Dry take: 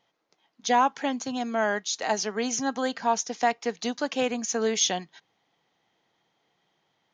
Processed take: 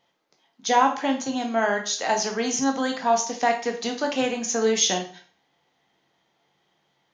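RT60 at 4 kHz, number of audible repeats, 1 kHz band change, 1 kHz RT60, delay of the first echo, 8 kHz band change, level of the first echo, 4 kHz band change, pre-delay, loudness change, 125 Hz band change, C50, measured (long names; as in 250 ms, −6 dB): 0.40 s, no echo audible, +3.0 dB, 0.45 s, no echo audible, +3.0 dB, no echo audible, +3.5 dB, 6 ms, +3.5 dB, can't be measured, 9.0 dB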